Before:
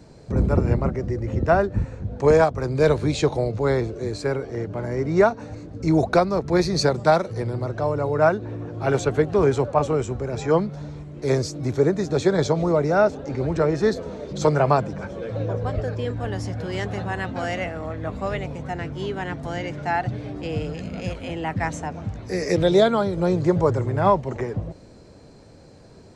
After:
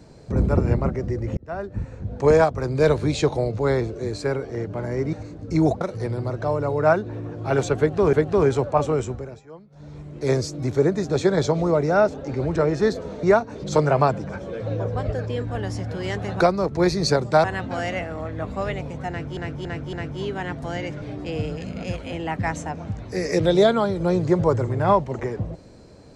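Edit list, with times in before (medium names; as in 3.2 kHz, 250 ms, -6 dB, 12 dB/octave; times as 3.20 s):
1.37–2.13 s: fade in
5.13–5.45 s: move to 14.24 s
6.13–7.17 s: move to 17.09 s
9.14–9.49 s: loop, 2 plays
10.06–11.07 s: dip -23.5 dB, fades 0.36 s
18.74–19.02 s: loop, 4 plays
19.83–20.19 s: delete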